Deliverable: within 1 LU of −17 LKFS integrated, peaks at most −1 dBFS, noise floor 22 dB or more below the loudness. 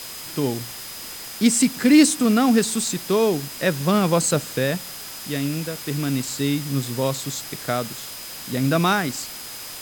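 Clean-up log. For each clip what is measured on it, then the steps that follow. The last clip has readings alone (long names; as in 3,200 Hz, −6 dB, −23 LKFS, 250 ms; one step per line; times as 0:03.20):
interfering tone 5,000 Hz; level of the tone −41 dBFS; background noise floor −36 dBFS; target noise floor −44 dBFS; integrated loudness −21.5 LKFS; sample peak −4.0 dBFS; target loudness −17.0 LKFS
→ notch filter 5,000 Hz, Q 30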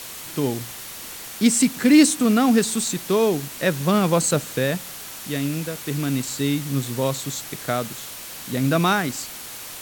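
interfering tone none found; background noise floor −37 dBFS; target noise floor −44 dBFS
→ broadband denoise 7 dB, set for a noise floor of −37 dBFS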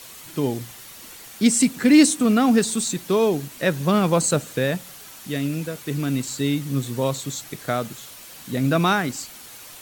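background noise floor −42 dBFS; target noise floor −44 dBFS
→ broadband denoise 6 dB, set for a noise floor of −42 dBFS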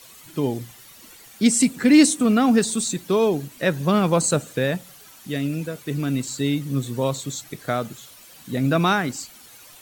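background noise floor −47 dBFS; integrated loudness −21.5 LKFS; sample peak −4.0 dBFS; target loudness −17.0 LKFS
→ level +4.5 dB
brickwall limiter −1 dBFS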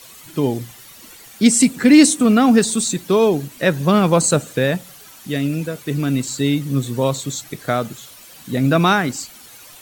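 integrated loudness −17.0 LKFS; sample peak −1.0 dBFS; background noise floor −42 dBFS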